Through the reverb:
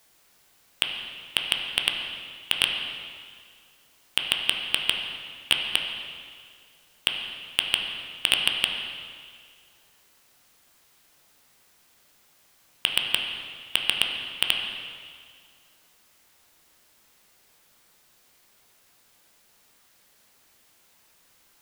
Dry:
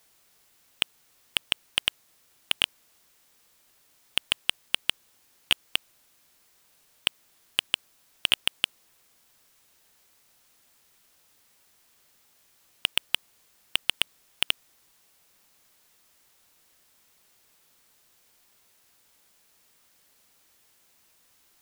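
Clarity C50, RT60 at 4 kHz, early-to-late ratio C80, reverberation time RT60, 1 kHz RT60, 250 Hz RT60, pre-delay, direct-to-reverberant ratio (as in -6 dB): 3.5 dB, 1.8 s, 4.5 dB, 1.9 s, 1.9 s, 1.9 s, 10 ms, 1.0 dB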